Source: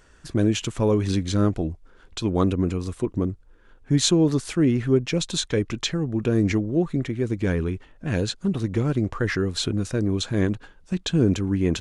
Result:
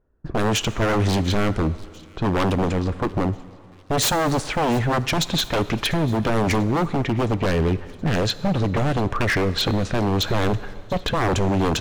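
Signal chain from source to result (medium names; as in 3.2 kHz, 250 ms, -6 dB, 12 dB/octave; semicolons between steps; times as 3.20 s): gate with hold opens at -40 dBFS; level-controlled noise filter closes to 680 Hz, open at -16.5 dBFS; 10.29–11.49 s: bass shelf 240 Hz +7 dB; in parallel at +3 dB: compression, threshold -28 dBFS, peak gain reduction 16.5 dB; on the sum: wavefolder -18 dBFS; on a send: feedback echo behind a high-pass 694 ms, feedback 56%, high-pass 2.5 kHz, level -21 dB; on the sum: plate-style reverb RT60 2.3 s, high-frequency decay 0.8×, DRR 15 dB; trim +3 dB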